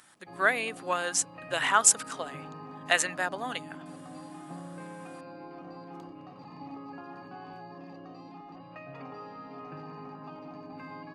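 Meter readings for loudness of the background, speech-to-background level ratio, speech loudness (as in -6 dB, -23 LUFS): -45.0 LUFS, 18.5 dB, -26.5 LUFS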